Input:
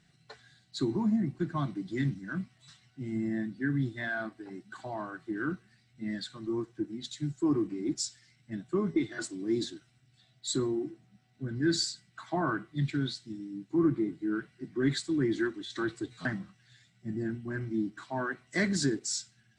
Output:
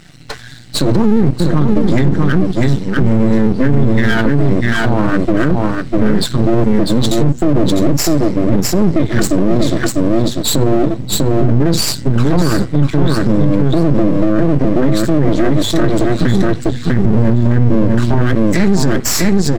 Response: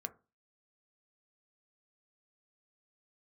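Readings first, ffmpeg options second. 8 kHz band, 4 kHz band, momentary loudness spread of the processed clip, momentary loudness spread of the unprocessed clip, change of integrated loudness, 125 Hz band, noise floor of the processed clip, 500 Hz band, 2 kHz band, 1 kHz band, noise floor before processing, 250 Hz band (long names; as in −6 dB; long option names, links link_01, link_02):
+17.5 dB, +17.0 dB, 3 LU, 12 LU, +19.0 dB, +23.5 dB, −25 dBFS, +20.0 dB, +15.0 dB, +18.5 dB, −67 dBFS, +19.0 dB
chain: -af "asubboost=boost=8.5:cutoff=230,acompressor=threshold=-26dB:ratio=4,aeval=exprs='max(val(0),0)':channel_layout=same,aecho=1:1:647:0.562,alimiter=level_in=28.5dB:limit=-1dB:release=50:level=0:latency=1,volume=-1dB"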